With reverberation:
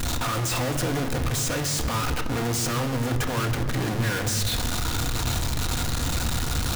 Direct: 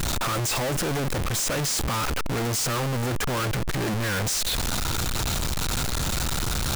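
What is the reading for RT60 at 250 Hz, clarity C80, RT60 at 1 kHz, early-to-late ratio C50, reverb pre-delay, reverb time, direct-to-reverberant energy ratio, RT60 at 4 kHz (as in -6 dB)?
3.2 s, 10.5 dB, 2.1 s, 9.5 dB, 3 ms, 2.2 s, 4.5 dB, 1.4 s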